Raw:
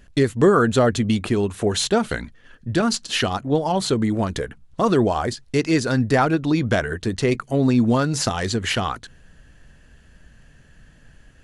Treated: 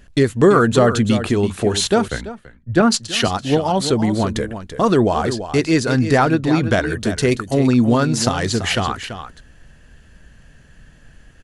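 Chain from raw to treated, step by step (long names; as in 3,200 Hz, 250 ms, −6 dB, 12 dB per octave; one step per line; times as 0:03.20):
0:06.90–0:07.58: high-shelf EQ 8,300 Hz +10 dB
on a send: single-tap delay 335 ms −10.5 dB
0:02.08–0:03.28: on the sum: multiband upward and downward expander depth 100%
level +3 dB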